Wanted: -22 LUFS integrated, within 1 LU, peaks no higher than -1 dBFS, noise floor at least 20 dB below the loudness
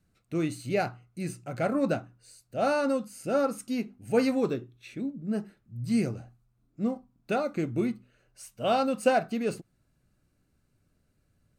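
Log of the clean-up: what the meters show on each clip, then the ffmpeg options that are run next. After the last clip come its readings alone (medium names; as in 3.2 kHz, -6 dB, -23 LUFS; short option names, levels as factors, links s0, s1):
loudness -30.0 LUFS; peak level -11.0 dBFS; loudness target -22.0 LUFS
-> -af "volume=2.51"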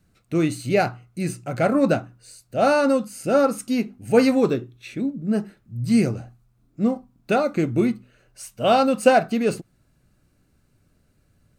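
loudness -22.0 LUFS; peak level -3.0 dBFS; noise floor -64 dBFS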